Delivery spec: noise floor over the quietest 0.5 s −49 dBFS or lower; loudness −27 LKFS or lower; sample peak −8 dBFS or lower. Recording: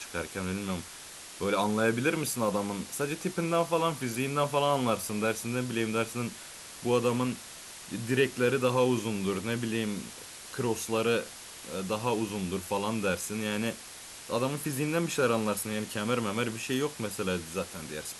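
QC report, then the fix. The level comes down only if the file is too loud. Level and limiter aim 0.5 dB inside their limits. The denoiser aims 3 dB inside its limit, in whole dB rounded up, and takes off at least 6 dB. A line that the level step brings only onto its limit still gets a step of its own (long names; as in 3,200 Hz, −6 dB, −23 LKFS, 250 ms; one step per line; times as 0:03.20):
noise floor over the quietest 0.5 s −46 dBFS: out of spec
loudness −30.5 LKFS: in spec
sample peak −12.5 dBFS: in spec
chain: broadband denoise 6 dB, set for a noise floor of −46 dBFS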